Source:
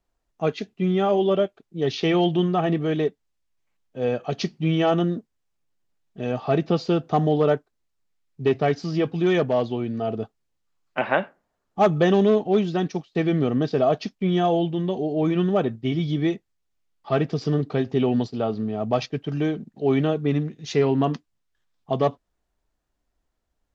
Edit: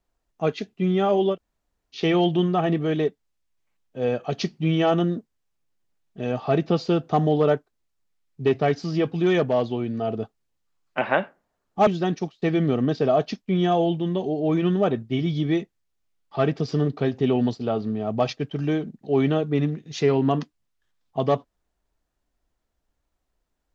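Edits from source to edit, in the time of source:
1.33–1.97 room tone, crossfade 0.10 s
11.87–12.6 cut

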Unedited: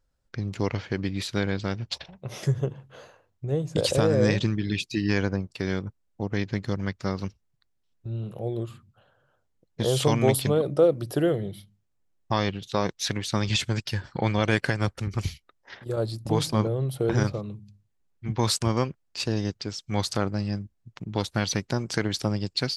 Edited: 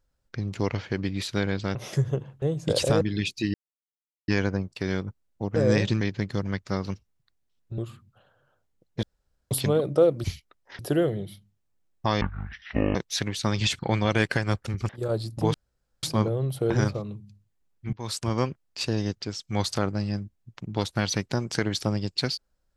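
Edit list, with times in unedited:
1.75–2.25 cut
2.92–3.5 cut
4.09–4.54 move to 6.35
5.07 insert silence 0.74 s
8.12–8.59 cut
9.84–10.32 room tone
12.47–12.84 speed 50%
13.68–14.12 cut
15.22–15.77 move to 11.05
16.42 insert room tone 0.49 s
18.32–18.83 fade in, from -20.5 dB

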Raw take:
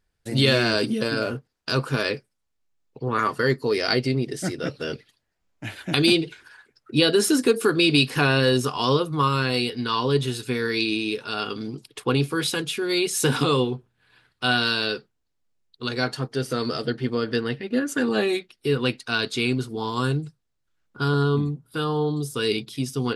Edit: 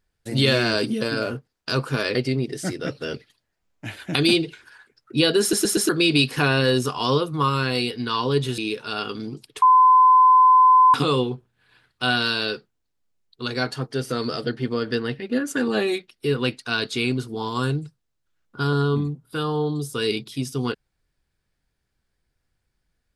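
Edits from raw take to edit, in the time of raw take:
2.15–3.94 cut
7.2 stutter in place 0.12 s, 4 plays
10.37–10.99 cut
12.03–13.35 bleep 1020 Hz -10 dBFS

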